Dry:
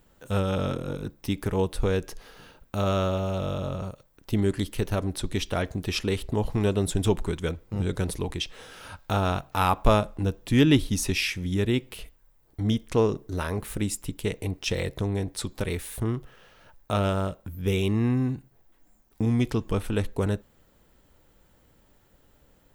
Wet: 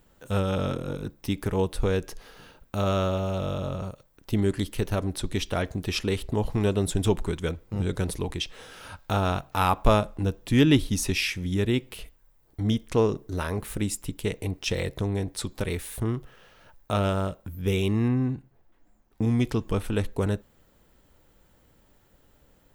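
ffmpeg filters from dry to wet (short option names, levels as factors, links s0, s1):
-filter_complex "[0:a]asettb=1/sr,asplit=3[s0][s1][s2];[s0]atrim=end=18.084[s3];[s1]atrim=start=18.08:end=19.22,asetpts=PTS-STARTPTS,afade=t=in:d=0.004:c=qsin,afade=t=out:st=1.136:d=0.004:c=qsin,highshelf=f=4500:g=-11[s4];[s2]atrim=start=19.216[s5];[s3][s4]acrossfade=d=0.004:c1=hsin:c2=qsin[s6];[s6][s5]acrossfade=d=0.004:c1=qsin:c2=hsin"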